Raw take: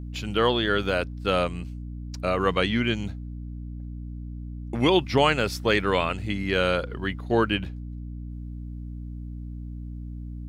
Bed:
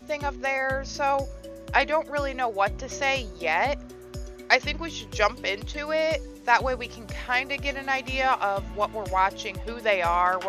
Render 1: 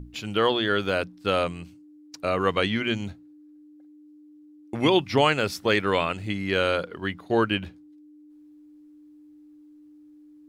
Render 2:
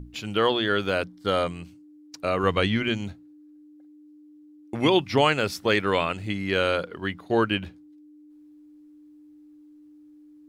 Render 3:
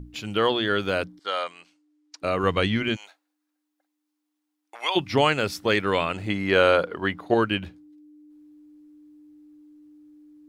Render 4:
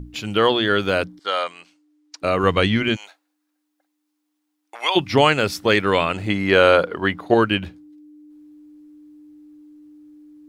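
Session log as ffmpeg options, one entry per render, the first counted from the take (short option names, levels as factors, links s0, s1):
-af "bandreject=f=60:t=h:w=6,bandreject=f=120:t=h:w=6,bandreject=f=180:t=h:w=6,bandreject=f=240:t=h:w=6"
-filter_complex "[0:a]asettb=1/sr,asplit=3[s0][s1][s2];[s0]atrim=end=1.044[s3];[s1]atrim=start=1.04:end=1.51,asetpts=PTS-STARTPTS,afade=t=in:d=0.004:c=qsin,afade=t=out:st=0.466:d=0.004:c=qsin,asuperstop=centerf=2600:order=8:qfactor=7.6[s4];[s2]atrim=start=1.506[s5];[s3][s4]acrossfade=d=0.004:c1=hsin:c2=qsin[s6];[s6][s5]acrossfade=d=0.004:c1=qsin:c2=hsin,asettb=1/sr,asplit=3[s7][s8][s9];[s7]atrim=end=2.434[s10];[s8]atrim=start=2.43:end=2.89,asetpts=PTS-STARTPTS,afade=t=in:d=0.004:c=qsin,afade=t=out:st=0.456:d=0.004:c=qsin,lowshelf=f=97:g=12[s11];[s9]atrim=start=2.886[s12];[s10][s11]acrossfade=d=0.004:c1=hsin:c2=qsin[s13];[s13][s12]acrossfade=d=0.004:c1=qsin:c2=hsin"
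-filter_complex "[0:a]asettb=1/sr,asplit=3[s0][s1][s2];[s0]atrim=end=1.194[s3];[s1]atrim=start=1.19:end=2.22,asetpts=PTS-STARTPTS,afade=t=in:d=0.004:c=qsin,afade=t=out:st=1.026:d=0.004:c=qsin,highpass=760,lowpass=7000[s4];[s2]atrim=start=2.216[s5];[s3][s4]acrossfade=d=0.004:c1=hsin:c2=qsin[s6];[s6][s5]acrossfade=d=0.004:c1=qsin:c2=hsin,asplit=3[s7][s8][s9];[s7]afade=t=out:st=2.95:d=0.02[s10];[s8]highpass=f=700:w=0.5412,highpass=f=700:w=1.3066,afade=t=in:st=2.95:d=0.02,afade=t=out:st=4.95:d=0.02[s11];[s9]afade=t=in:st=4.95:d=0.02[s12];[s10][s11][s12]amix=inputs=3:normalize=0,asettb=1/sr,asplit=3[s13][s14][s15];[s13]atrim=end=6.144[s16];[s14]atrim=start=6.14:end=7.34,asetpts=PTS-STARTPTS,afade=t=in:d=0.004:c=qsin,afade=t=out:st=1.196:d=0.004:c=qsin,equalizer=f=810:t=o:w=2.6:g=7.5[s17];[s15]atrim=start=7.336[s18];[s16][s17]acrossfade=d=0.004:c1=hsin:c2=qsin[s19];[s19][s18]acrossfade=d=0.004:c1=qsin:c2=hsin"
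-af "volume=1.78,alimiter=limit=0.891:level=0:latency=1"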